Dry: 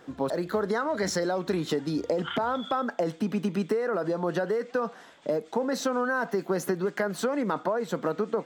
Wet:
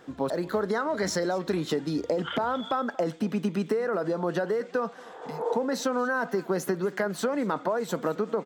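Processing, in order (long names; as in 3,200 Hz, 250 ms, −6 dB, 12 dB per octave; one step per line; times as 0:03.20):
0:05.00–0:05.52: healed spectral selection 300–1,900 Hz both
0:07.69–0:08.13: high-shelf EQ 4,200 Hz → 8,100 Hz +8.5 dB
single-tap delay 230 ms −21.5 dB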